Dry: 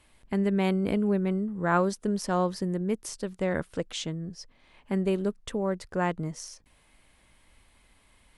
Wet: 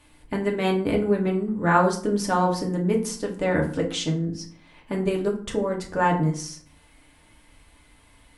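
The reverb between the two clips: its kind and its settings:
feedback delay network reverb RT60 0.48 s, low-frequency decay 1.5×, high-frequency decay 0.65×, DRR −0.5 dB
level +3 dB

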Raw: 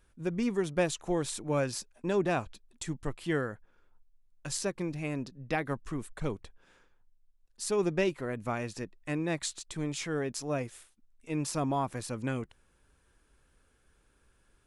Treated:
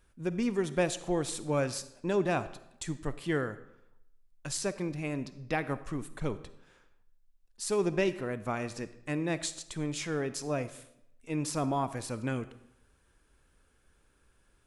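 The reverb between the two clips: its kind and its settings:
comb and all-pass reverb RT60 0.8 s, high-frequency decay 0.85×, pre-delay 10 ms, DRR 13.5 dB

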